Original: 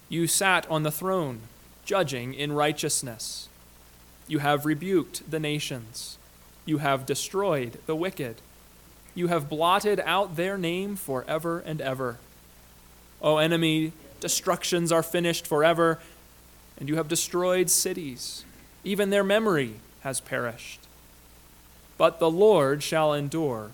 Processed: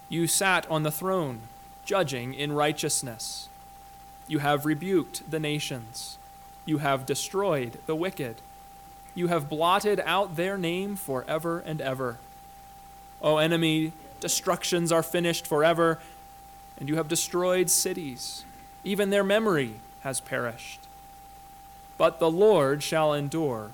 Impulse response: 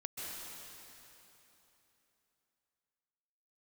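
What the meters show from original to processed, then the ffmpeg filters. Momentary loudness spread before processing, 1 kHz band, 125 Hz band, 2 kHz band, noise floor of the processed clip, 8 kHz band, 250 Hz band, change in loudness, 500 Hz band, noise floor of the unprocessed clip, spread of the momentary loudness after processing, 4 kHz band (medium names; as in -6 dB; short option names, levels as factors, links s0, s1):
14 LU, -0.5 dB, -0.5 dB, -1.0 dB, -48 dBFS, -0.5 dB, -0.5 dB, -0.5 dB, -1.0 dB, -53 dBFS, 14 LU, -1.0 dB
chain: -af "acontrast=54,aeval=exprs='val(0)+0.01*sin(2*PI*790*n/s)':c=same,volume=0.473"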